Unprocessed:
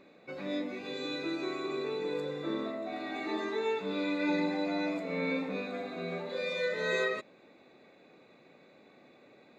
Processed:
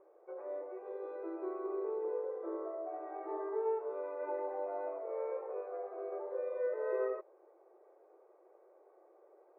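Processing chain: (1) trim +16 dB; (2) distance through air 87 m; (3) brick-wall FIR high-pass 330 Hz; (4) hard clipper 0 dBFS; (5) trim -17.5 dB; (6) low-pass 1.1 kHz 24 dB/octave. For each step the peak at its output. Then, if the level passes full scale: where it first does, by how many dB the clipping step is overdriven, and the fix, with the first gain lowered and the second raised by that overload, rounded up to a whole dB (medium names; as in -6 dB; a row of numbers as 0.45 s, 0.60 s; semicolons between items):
-3.0 dBFS, -3.5 dBFS, -3.5 dBFS, -3.5 dBFS, -21.0 dBFS, -24.0 dBFS; nothing clips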